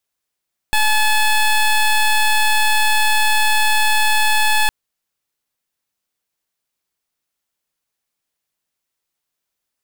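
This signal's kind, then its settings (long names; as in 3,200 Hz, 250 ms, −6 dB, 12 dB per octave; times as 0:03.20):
pulse wave 860 Hz, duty 14% −14 dBFS 3.96 s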